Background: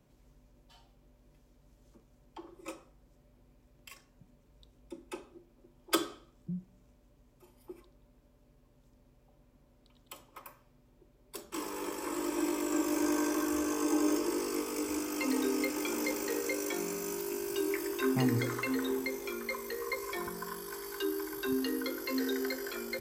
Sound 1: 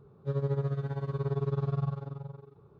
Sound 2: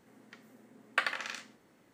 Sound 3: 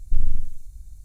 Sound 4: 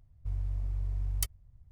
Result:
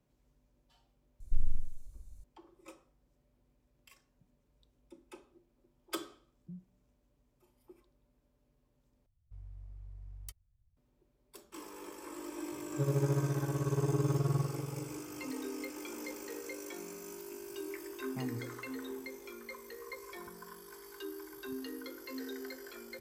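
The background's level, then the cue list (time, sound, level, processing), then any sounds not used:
background -9.5 dB
1.2 add 3 -10 dB
9.06 replace with 4 -16 dB
12.52 add 1 -1 dB
not used: 2

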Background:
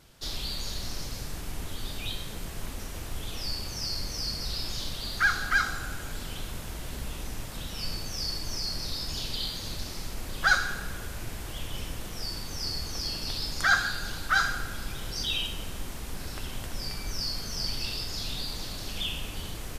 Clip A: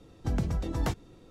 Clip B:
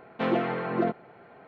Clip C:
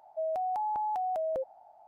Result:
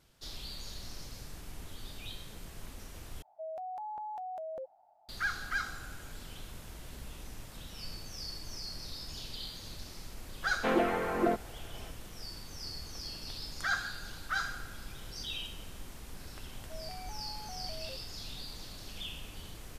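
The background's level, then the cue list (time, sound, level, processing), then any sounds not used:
background -9.5 dB
3.22 replace with C -9 dB
10.44 add B -1.5 dB + HPF 230 Hz
16.53 add C -15.5 dB + delta modulation 64 kbps, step -53 dBFS
not used: A

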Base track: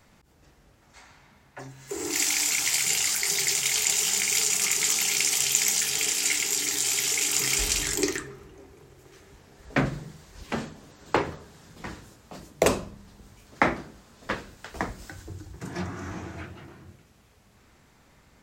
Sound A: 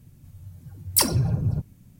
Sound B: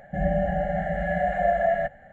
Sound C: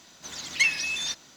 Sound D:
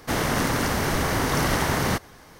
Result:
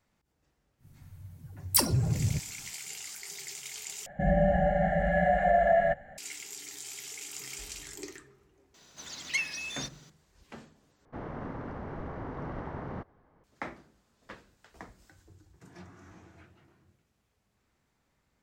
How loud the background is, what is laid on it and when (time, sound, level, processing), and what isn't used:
base track -17 dB
0.78 add A -4.5 dB, fades 0.10 s
4.06 replace with B + limiter -14.5 dBFS
8.74 add C -5.5 dB + dynamic EQ 3500 Hz, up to -4 dB, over -33 dBFS, Q 0.74
11.05 replace with D -14 dB + LPF 1100 Hz

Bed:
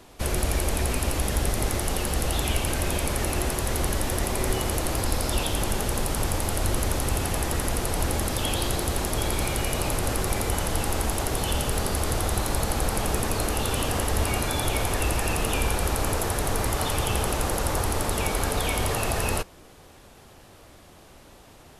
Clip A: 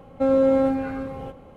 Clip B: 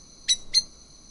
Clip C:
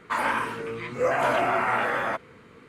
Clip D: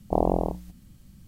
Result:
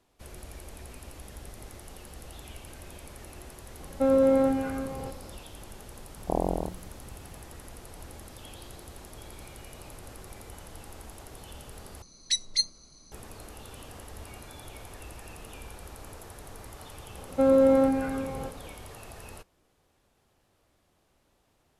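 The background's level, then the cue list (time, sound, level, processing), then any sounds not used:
bed -19.5 dB
3.8 add A -3 dB
6.17 add D -5 dB
12.02 replace with B -4.5 dB
17.18 add A -1.5 dB
not used: C

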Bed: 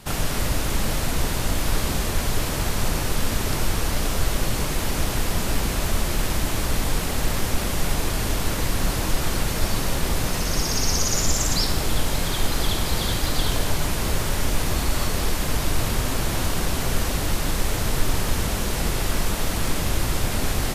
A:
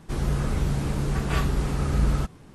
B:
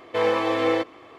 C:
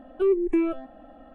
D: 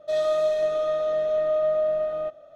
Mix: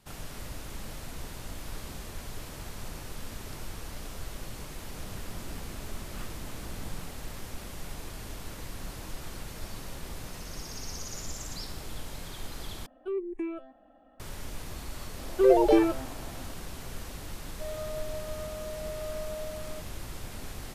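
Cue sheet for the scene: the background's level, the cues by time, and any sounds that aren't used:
bed -17 dB
4.84 add A -18 dB + full-wave rectifier
12.86 replace with C -9.5 dB + low shelf 280 Hz -5 dB
15.19 add C + echoes that change speed 97 ms, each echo +5 st, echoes 3
17.52 add D -15.5 dB
not used: B

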